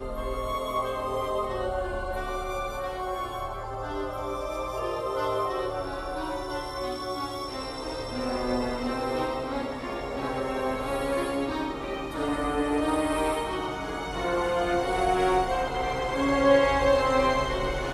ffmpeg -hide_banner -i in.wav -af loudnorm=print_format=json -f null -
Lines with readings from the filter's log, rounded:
"input_i" : "-27.5",
"input_tp" : "-8.8",
"input_lra" : "7.3",
"input_thresh" : "-37.5",